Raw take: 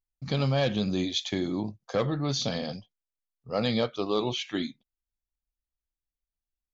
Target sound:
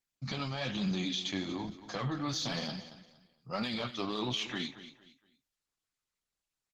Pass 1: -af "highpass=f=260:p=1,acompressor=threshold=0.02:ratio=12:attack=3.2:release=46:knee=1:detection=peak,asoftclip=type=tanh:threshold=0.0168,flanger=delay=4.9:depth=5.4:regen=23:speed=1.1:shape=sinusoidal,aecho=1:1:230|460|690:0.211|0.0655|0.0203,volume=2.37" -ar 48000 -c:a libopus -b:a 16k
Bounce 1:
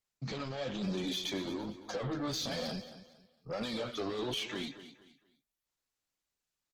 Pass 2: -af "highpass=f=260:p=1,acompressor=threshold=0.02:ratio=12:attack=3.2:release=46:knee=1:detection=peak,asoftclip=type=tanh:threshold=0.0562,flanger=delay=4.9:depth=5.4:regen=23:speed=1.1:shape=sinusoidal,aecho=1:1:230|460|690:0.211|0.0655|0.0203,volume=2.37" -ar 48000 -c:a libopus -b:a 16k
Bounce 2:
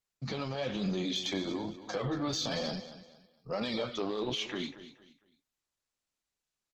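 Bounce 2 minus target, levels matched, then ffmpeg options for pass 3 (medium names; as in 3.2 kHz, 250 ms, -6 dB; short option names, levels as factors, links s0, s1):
500 Hz band +5.0 dB
-af "highpass=f=260:p=1,equalizer=f=470:t=o:w=1.1:g=-12,acompressor=threshold=0.02:ratio=12:attack=3.2:release=46:knee=1:detection=peak,asoftclip=type=tanh:threshold=0.0562,flanger=delay=4.9:depth=5.4:regen=23:speed=1.1:shape=sinusoidal,aecho=1:1:230|460|690:0.211|0.0655|0.0203,volume=2.37" -ar 48000 -c:a libopus -b:a 16k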